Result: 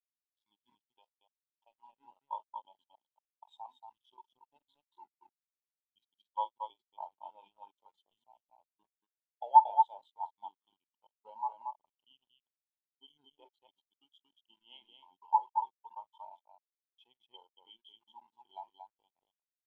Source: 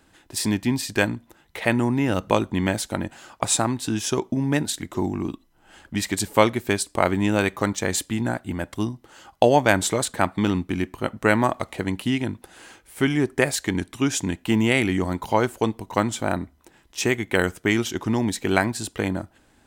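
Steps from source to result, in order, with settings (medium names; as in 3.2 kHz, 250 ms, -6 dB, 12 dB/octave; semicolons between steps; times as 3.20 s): saturation -5.5 dBFS, distortion -22 dB; two resonant band-passes 1.7 kHz, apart 1.8 oct; 0.85–2.29 s: compression 2.5:1, threshold -36 dBFS, peak gain reduction 5 dB; loudspeakers at several distances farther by 16 m -10 dB, 79 m -2 dB; bit crusher 6-bit; spectral contrast expander 2.5:1; trim +5 dB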